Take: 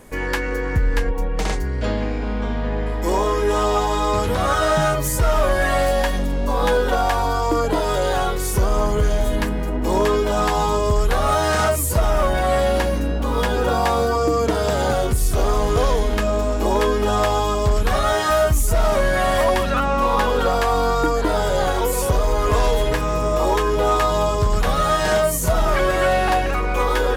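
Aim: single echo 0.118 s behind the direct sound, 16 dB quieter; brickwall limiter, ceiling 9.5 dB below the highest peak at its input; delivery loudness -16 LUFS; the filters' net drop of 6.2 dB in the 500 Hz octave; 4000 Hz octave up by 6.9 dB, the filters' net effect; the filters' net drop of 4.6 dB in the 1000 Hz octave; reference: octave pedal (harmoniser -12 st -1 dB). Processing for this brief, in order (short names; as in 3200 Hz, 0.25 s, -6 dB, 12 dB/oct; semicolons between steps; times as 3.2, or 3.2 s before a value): bell 500 Hz -6.5 dB; bell 1000 Hz -4.5 dB; bell 4000 Hz +9 dB; limiter -16.5 dBFS; echo 0.118 s -16 dB; harmoniser -12 st -1 dB; gain +7.5 dB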